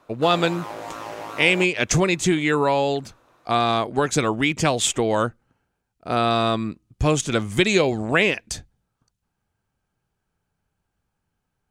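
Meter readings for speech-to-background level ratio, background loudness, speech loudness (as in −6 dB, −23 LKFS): 14.0 dB, −35.0 LKFS, −21.0 LKFS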